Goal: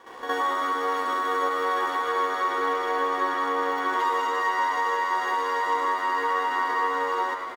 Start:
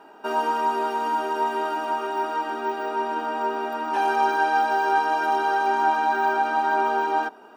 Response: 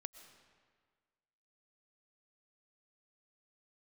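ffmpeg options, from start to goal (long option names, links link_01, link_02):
-filter_complex "[0:a]bandreject=frequency=265.4:width_type=h:width=4,bandreject=frequency=530.8:width_type=h:width=4,bandreject=frequency=796.2:width_type=h:width=4,bandreject=frequency=1061.6:width_type=h:width=4,bandreject=frequency=1327:width_type=h:width=4,acompressor=threshold=-32dB:ratio=6,asetrate=52444,aresample=44100,atempo=0.840896,aeval=exprs='sgn(val(0))*max(abs(val(0))-0.00119,0)':channel_layout=same,asplit=7[link_01][link_02][link_03][link_04][link_05][link_06][link_07];[link_02]adelay=106,afreqshift=91,volume=-9dB[link_08];[link_03]adelay=212,afreqshift=182,volume=-14.7dB[link_09];[link_04]adelay=318,afreqshift=273,volume=-20.4dB[link_10];[link_05]adelay=424,afreqshift=364,volume=-26dB[link_11];[link_06]adelay=530,afreqshift=455,volume=-31.7dB[link_12];[link_07]adelay=636,afreqshift=546,volume=-37.4dB[link_13];[link_01][link_08][link_09][link_10][link_11][link_12][link_13]amix=inputs=7:normalize=0,asplit=2[link_14][link_15];[1:a]atrim=start_sample=2205,adelay=64[link_16];[link_15][link_16]afir=irnorm=-1:irlink=0,volume=12.5dB[link_17];[link_14][link_17]amix=inputs=2:normalize=0"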